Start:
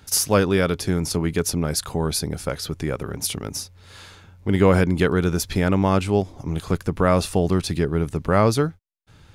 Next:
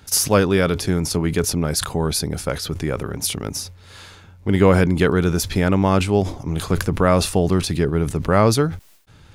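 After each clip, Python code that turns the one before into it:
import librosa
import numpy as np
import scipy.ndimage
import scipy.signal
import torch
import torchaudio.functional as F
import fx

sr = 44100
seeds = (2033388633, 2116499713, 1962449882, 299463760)

y = fx.sustainer(x, sr, db_per_s=110.0)
y = y * librosa.db_to_amplitude(2.0)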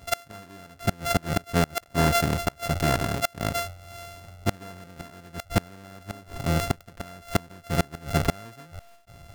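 y = np.r_[np.sort(x[:len(x) // 64 * 64].reshape(-1, 64), axis=1).ravel(), x[len(x) // 64 * 64:]]
y = fx.dynamic_eq(y, sr, hz=1600.0, q=3.9, threshold_db=-38.0, ratio=4.0, max_db=5)
y = fx.gate_flip(y, sr, shuts_db=-9.0, range_db=-29)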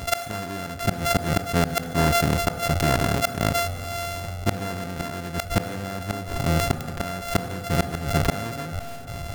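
y = fx.rev_fdn(x, sr, rt60_s=2.3, lf_ratio=1.0, hf_ratio=0.65, size_ms=12.0, drr_db=19.5)
y = fx.env_flatten(y, sr, amount_pct=50)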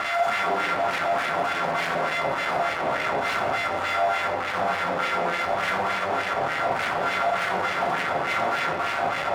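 y = np.sign(x) * np.sqrt(np.mean(np.square(x)))
y = fx.filter_lfo_bandpass(y, sr, shape='sine', hz=3.4, low_hz=720.0, high_hz=2100.0, q=1.9)
y = fx.room_shoebox(y, sr, seeds[0], volume_m3=900.0, walls='mixed', distance_m=1.1)
y = y * librosa.db_to_amplitude(7.5)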